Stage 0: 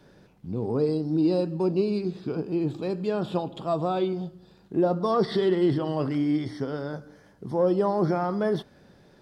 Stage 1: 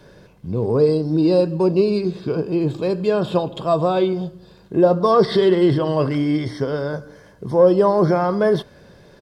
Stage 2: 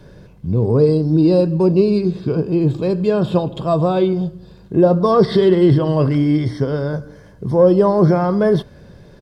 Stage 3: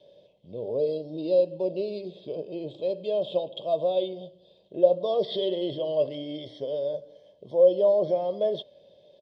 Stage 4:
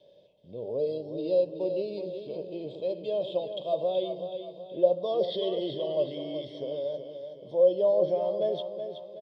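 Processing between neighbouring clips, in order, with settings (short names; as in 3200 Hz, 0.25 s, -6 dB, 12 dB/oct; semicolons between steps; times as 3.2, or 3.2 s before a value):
comb 1.9 ms, depth 36%; gain +8 dB
low shelf 240 Hz +11 dB; gain -1 dB
double band-pass 1400 Hz, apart 2.5 oct
feedback echo 0.374 s, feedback 44%, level -8.5 dB; gain -3 dB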